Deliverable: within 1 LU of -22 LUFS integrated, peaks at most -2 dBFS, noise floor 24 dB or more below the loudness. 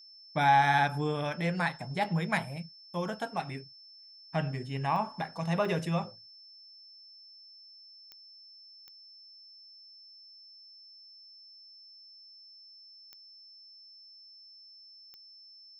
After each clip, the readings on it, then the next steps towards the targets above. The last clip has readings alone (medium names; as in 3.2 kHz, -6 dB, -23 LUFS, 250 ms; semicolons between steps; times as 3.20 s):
clicks found 6; steady tone 5.3 kHz; tone level -51 dBFS; loudness -30.5 LUFS; peak level -12.5 dBFS; loudness target -22.0 LUFS
-> de-click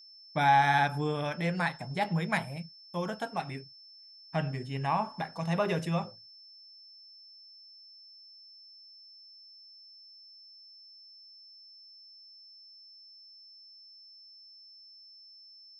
clicks found 0; steady tone 5.3 kHz; tone level -51 dBFS
-> band-stop 5.3 kHz, Q 30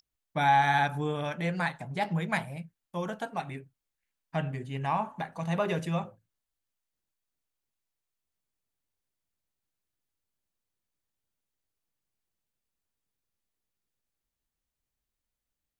steady tone not found; loudness -30.5 LUFS; peak level -12.5 dBFS; loudness target -22.0 LUFS
-> trim +8.5 dB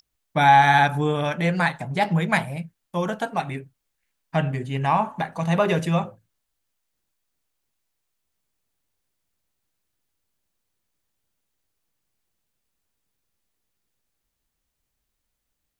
loudness -22.0 LUFS; peak level -4.0 dBFS; noise floor -79 dBFS